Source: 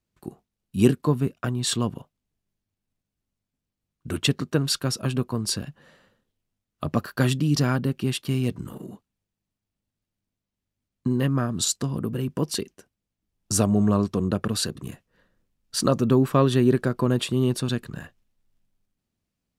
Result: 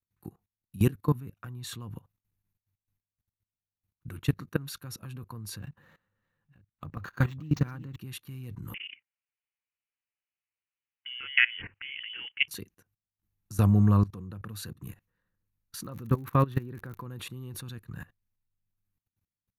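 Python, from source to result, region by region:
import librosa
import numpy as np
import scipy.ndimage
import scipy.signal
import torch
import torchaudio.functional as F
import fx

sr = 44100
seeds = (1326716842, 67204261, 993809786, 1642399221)

y = fx.chain(x, sr, fx.reverse_delay(ms=512, wet_db=-13),
    fx.resample_linear(factor=4), at=(5.59, 7.96))
y = fx.chain(y, sr, fx.highpass(hz=180.0, slope=12),
    fx.peak_eq(hz=910.0, db=14.5, octaves=2.3),
    fx.freq_invert(carrier_hz=3200), at=(8.74, 12.48))
y = fx.peak_eq(y, sr, hz=7900.0, db=-13.5, octaves=1.4, at=(15.83, 17.01), fade=0.02)
y = fx.dmg_crackle(y, sr, seeds[0], per_s=70.0, level_db=-26.0, at=(15.83, 17.01), fade=0.02)
y = fx.graphic_eq_31(y, sr, hz=(100, 250, 400, 630, 3150, 5000, 8000, 12500), db=(8, -6, -8, -12, -7, -10, -10, 9))
y = fx.level_steps(y, sr, step_db=20)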